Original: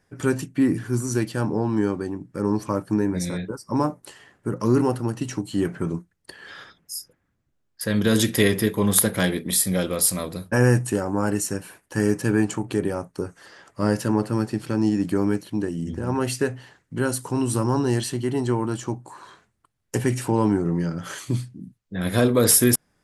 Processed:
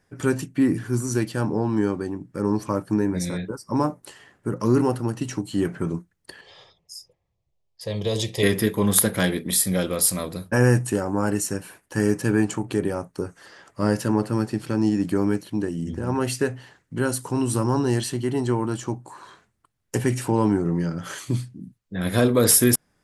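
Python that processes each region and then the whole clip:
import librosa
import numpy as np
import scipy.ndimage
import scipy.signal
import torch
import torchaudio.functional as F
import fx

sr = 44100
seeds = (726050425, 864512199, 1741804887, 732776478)

y = fx.chain(x, sr, fx.lowpass(hz=5700.0, slope=12),
    fx.fixed_phaser(hz=620.0, stages=4), at=(6.41, 8.43))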